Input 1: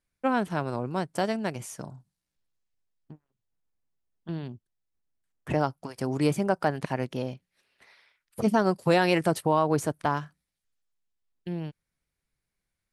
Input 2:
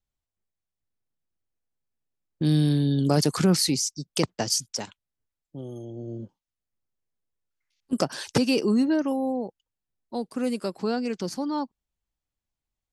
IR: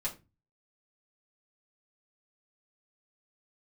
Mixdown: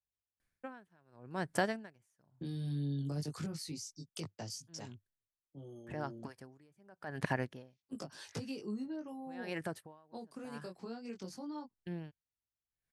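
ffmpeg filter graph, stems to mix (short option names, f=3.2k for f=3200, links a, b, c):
-filter_complex "[0:a]equalizer=f=1.7k:w=3.9:g=8.5,alimiter=limit=-17.5dB:level=0:latency=1:release=203,aeval=exprs='val(0)*pow(10,-37*(0.5-0.5*cos(2*PI*0.87*n/s))/20)':c=same,adelay=400,volume=-0.5dB[a];[1:a]highpass=46,acrossover=split=160[b][c];[c]acompressor=threshold=-28dB:ratio=10[d];[b][d]amix=inputs=2:normalize=0,flanger=delay=18.5:depth=3.9:speed=0.24,volume=-10.5dB,asplit=2[e][f];[f]apad=whole_len=587684[g];[a][g]sidechaincompress=threshold=-50dB:ratio=10:attack=43:release=1350[h];[h][e]amix=inputs=2:normalize=0,equalizer=f=100:t=o:w=0.38:g=5"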